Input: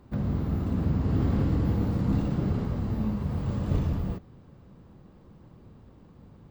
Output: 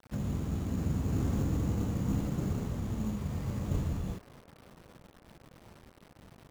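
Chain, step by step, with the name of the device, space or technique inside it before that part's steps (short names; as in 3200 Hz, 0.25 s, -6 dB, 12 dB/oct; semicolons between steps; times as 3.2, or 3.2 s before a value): early 8-bit sampler (sample-rate reducer 6900 Hz, jitter 0%; bit-crush 8-bit); band-limited delay 0.562 s, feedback 69%, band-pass 910 Hz, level -17 dB; gain -5.5 dB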